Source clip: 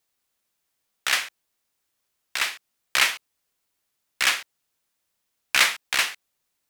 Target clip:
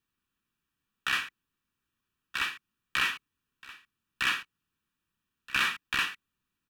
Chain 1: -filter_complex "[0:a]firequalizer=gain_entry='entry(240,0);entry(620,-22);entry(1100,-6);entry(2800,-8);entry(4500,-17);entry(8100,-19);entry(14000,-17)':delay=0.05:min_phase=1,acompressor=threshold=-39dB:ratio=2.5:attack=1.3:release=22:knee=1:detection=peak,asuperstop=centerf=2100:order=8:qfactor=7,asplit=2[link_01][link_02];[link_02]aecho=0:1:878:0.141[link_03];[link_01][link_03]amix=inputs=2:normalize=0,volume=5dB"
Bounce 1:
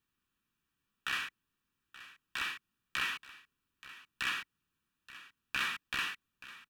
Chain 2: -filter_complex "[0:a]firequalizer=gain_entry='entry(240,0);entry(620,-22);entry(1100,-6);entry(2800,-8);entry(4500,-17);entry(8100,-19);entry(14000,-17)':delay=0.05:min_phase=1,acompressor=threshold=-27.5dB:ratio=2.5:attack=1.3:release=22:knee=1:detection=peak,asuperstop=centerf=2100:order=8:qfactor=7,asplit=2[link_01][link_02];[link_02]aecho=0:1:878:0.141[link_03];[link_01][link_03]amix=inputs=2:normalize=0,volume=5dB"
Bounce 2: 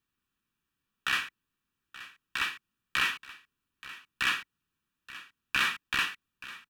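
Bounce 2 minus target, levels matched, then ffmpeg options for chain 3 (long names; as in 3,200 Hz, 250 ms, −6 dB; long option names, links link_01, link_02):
echo 398 ms early
-filter_complex "[0:a]firequalizer=gain_entry='entry(240,0);entry(620,-22);entry(1100,-6);entry(2800,-8);entry(4500,-17);entry(8100,-19);entry(14000,-17)':delay=0.05:min_phase=1,acompressor=threshold=-27.5dB:ratio=2.5:attack=1.3:release=22:knee=1:detection=peak,asuperstop=centerf=2100:order=8:qfactor=7,asplit=2[link_01][link_02];[link_02]aecho=0:1:1276:0.141[link_03];[link_01][link_03]amix=inputs=2:normalize=0,volume=5dB"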